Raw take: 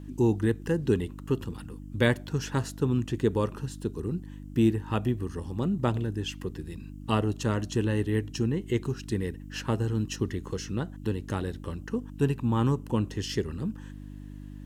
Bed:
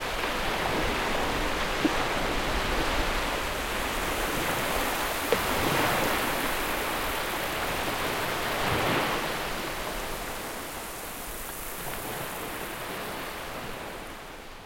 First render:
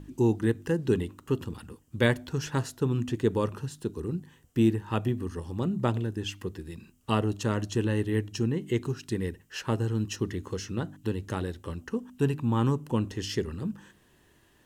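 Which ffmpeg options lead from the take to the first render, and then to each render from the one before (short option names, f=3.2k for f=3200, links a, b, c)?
-af "bandreject=f=50:t=h:w=4,bandreject=f=100:t=h:w=4,bandreject=f=150:t=h:w=4,bandreject=f=200:t=h:w=4,bandreject=f=250:t=h:w=4,bandreject=f=300:t=h:w=4"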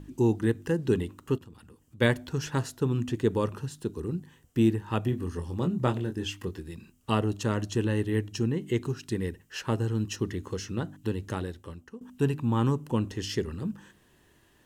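-filter_complex "[0:a]asplit=3[a][b][c];[a]afade=t=out:st=1.37:d=0.02[d];[b]acompressor=threshold=-55dB:ratio=2:attack=3.2:release=140:knee=1:detection=peak,afade=t=in:st=1.37:d=0.02,afade=t=out:st=2:d=0.02[e];[c]afade=t=in:st=2:d=0.02[f];[d][e][f]amix=inputs=3:normalize=0,asettb=1/sr,asplit=3[g][h][i];[g]atrim=end=5.104[j];[h]atrim=start=5.1:end=6.6,asetpts=PTS-STARTPTS,afade=t=in:d=0.004:c=qsin,afade=t=out:st=1.496:d=0.004:c=qsin,asplit=2[k][l];[l]adelay=23,volume=-6.5dB[m];[k][m]amix=inputs=2:normalize=0,atrim=end_sample=66150[n];[i]atrim=start=6.596[o];[j][n]acrossfade=d=0.004:c1=hsin:c2=qsin[p];[p][o]acrossfade=d=0.004:c1=qsin:c2=hsin,asplit=2[q][r];[q]atrim=end=12.01,asetpts=PTS-STARTPTS,afade=t=out:st=11.29:d=0.72:silence=0.158489[s];[r]atrim=start=12.01,asetpts=PTS-STARTPTS,afade=t=in:d=0.004:c=hsin:silence=0.158489[t];[s][t]concat=n=2:v=0:a=1"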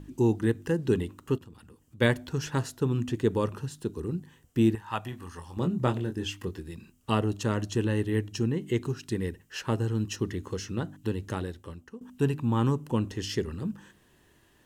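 -filter_complex "[0:a]asettb=1/sr,asplit=3[a][b][c];[a]atrim=end=4.754[d];[b]atrim=start=4.75:end=5.57,asetpts=PTS-STARTPTS,afade=t=in:d=0.004:c=qsin,afade=t=out:st=0.816:d=0.004:c=qsin,lowshelf=f=580:t=q:w=1.5:g=-9.5[e];[c]atrim=start=5.566[f];[d][e]acrossfade=d=0.004:c1=hsin:c2=qsin[g];[g][f]acrossfade=d=0.004:c1=qsin:c2=hsin"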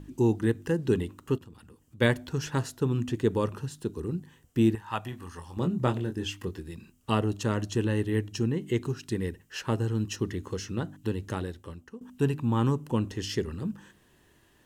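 -af anull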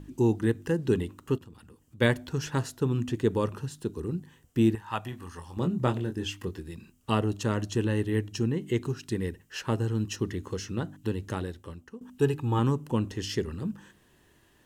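-filter_complex "[0:a]asettb=1/sr,asplit=3[a][b][c];[a]atrim=end=12.184[d];[b]atrim=start=12.18:end=12.59,asetpts=PTS-STARTPTS,afade=t=in:d=0.004:c=qsin,afade=t=out:st=0.406:d=0.004:c=qsin,aecho=1:1:2.4:0.65,atrim=end_sample=18081[e];[c]atrim=start=12.586[f];[d][e]acrossfade=d=0.004:c1=hsin:c2=qsin[g];[g][f]acrossfade=d=0.004:c1=qsin:c2=hsin"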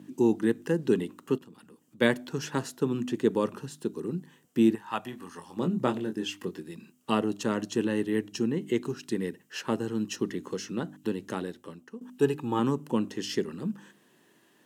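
-af "highpass=f=180:w=0.5412,highpass=f=180:w=1.3066,lowshelf=f=230:g=4.5"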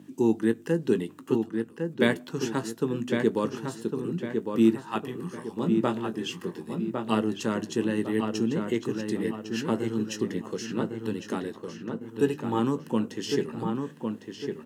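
-filter_complex "[0:a]asplit=2[a][b];[b]adelay=18,volume=-12.5dB[c];[a][c]amix=inputs=2:normalize=0,asplit=2[d][e];[e]adelay=1105,lowpass=f=2.9k:p=1,volume=-5dB,asplit=2[f][g];[g]adelay=1105,lowpass=f=2.9k:p=1,volume=0.41,asplit=2[h][i];[i]adelay=1105,lowpass=f=2.9k:p=1,volume=0.41,asplit=2[j][k];[k]adelay=1105,lowpass=f=2.9k:p=1,volume=0.41,asplit=2[l][m];[m]adelay=1105,lowpass=f=2.9k:p=1,volume=0.41[n];[d][f][h][j][l][n]amix=inputs=6:normalize=0"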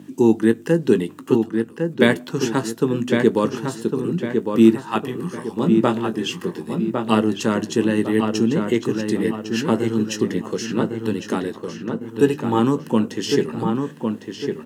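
-af "volume=8dB,alimiter=limit=-1dB:level=0:latency=1"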